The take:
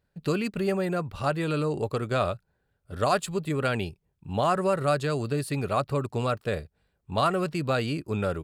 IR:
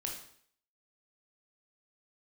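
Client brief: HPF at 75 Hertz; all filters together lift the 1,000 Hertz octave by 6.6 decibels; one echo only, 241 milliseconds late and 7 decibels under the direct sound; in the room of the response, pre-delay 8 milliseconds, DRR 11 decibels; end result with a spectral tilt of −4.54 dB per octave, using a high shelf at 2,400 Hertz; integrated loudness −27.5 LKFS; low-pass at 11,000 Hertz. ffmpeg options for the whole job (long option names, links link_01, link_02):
-filter_complex "[0:a]highpass=75,lowpass=11000,equalizer=frequency=1000:width_type=o:gain=8,highshelf=frequency=2400:gain=4,aecho=1:1:241:0.447,asplit=2[link_01][link_02];[1:a]atrim=start_sample=2205,adelay=8[link_03];[link_02][link_03]afir=irnorm=-1:irlink=0,volume=-11dB[link_04];[link_01][link_04]amix=inputs=2:normalize=0,volume=-3.5dB"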